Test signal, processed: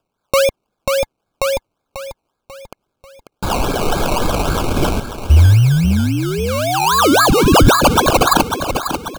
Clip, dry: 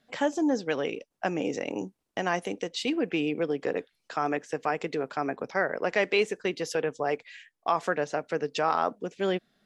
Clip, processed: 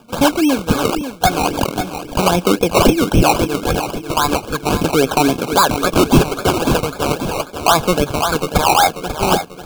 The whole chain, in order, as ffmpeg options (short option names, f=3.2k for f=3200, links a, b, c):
-af "aphaser=in_gain=1:out_gain=1:delay=1.4:decay=0.77:speed=0.39:type=triangular,equalizer=f=3k:t=o:w=0.83:g=15,asoftclip=type=tanh:threshold=-9.5dB,aecho=1:1:541|1082|1623|2164|2705:0.316|0.145|0.0669|0.0308|0.0142,acrusher=samples=21:mix=1:aa=0.000001:lfo=1:lforange=12.6:lforate=3.7,asuperstop=centerf=1900:order=20:qfactor=4.3,alimiter=level_in=11dB:limit=-1dB:release=50:level=0:latency=1,volume=-1dB"